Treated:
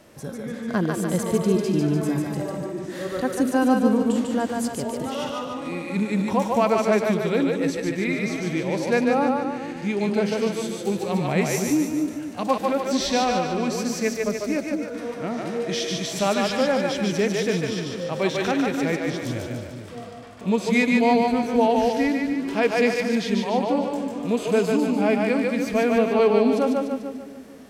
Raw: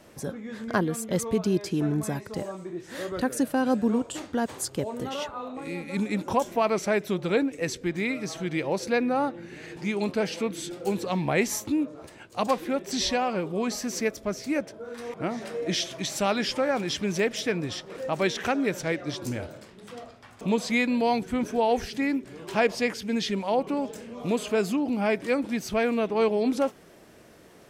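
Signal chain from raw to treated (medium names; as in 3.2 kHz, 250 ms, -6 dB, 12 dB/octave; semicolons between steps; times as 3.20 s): two-band feedback delay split 360 Hz, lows 226 ms, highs 147 ms, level -3 dB; harmonic-percussive split percussive -8 dB; trim +4 dB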